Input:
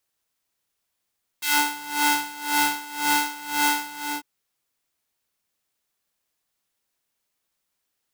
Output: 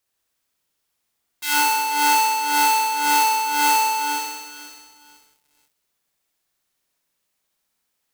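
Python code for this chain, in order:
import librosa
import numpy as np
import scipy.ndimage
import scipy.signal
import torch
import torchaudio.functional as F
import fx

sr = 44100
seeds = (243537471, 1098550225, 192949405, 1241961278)

y = fx.room_flutter(x, sr, wall_m=10.9, rt60_s=1.4)
y = fx.echo_crushed(y, sr, ms=491, feedback_pct=35, bits=7, wet_db=-13)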